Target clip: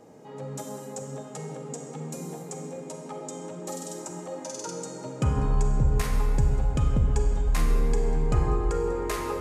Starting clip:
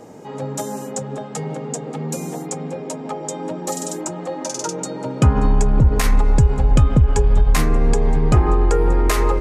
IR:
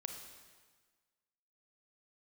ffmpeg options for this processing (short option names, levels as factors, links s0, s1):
-filter_complex "[1:a]atrim=start_sample=2205[s0];[0:a][s0]afir=irnorm=-1:irlink=0,volume=0.398"